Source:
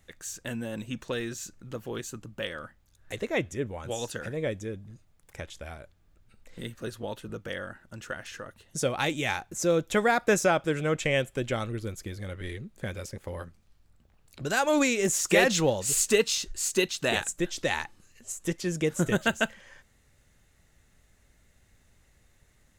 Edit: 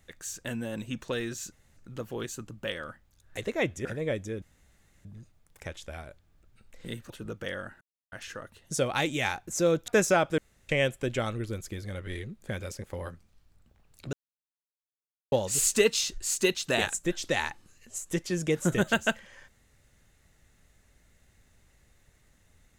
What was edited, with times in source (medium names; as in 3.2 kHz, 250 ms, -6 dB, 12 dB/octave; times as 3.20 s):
1.52 s: insert room tone 0.25 s
3.60–4.21 s: delete
4.78 s: insert room tone 0.63 s
6.83–7.14 s: delete
7.85–8.16 s: mute
9.92–10.22 s: delete
10.72–11.03 s: room tone
14.47–15.66 s: mute